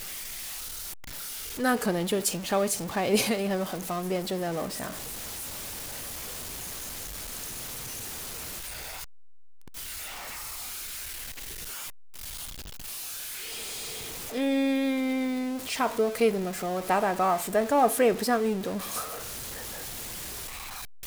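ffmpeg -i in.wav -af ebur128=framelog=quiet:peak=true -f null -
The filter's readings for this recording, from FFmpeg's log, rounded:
Integrated loudness:
  I:         -30.1 LUFS
  Threshold: -40.2 LUFS
Loudness range:
  LRA:        10.6 LU
  Threshold: -50.0 LUFS
  LRA low:   -36.5 LUFS
  LRA high:  -25.9 LUFS
True peak:
  Peak:      -10.5 dBFS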